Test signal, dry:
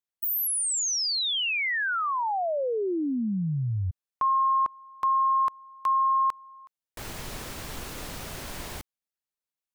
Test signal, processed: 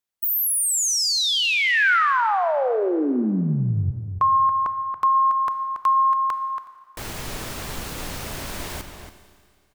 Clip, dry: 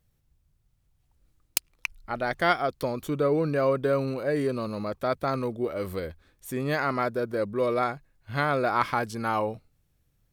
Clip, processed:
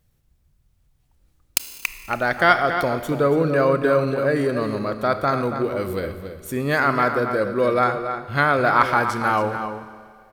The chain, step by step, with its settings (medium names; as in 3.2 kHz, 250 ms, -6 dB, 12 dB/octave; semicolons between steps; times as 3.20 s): echo from a far wall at 48 m, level -8 dB; dynamic bell 1.5 kHz, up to +5 dB, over -43 dBFS, Q 2.1; Schroeder reverb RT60 2.1 s, combs from 25 ms, DRR 11 dB; trim +5 dB